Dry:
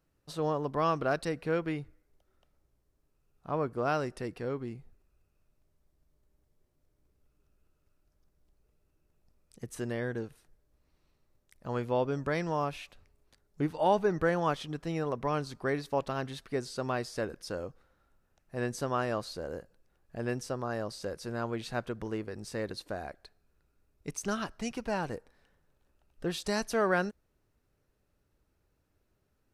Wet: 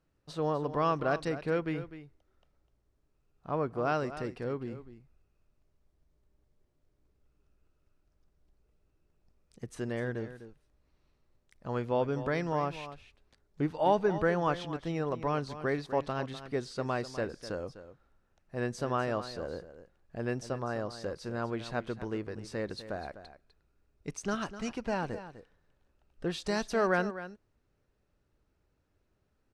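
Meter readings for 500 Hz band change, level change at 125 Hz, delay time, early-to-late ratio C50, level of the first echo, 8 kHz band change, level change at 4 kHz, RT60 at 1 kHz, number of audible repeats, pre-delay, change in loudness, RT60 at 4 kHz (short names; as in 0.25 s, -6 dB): 0.0 dB, 0.0 dB, 0.251 s, none, -13.0 dB, -4.0 dB, -1.5 dB, none, 1, none, 0.0 dB, none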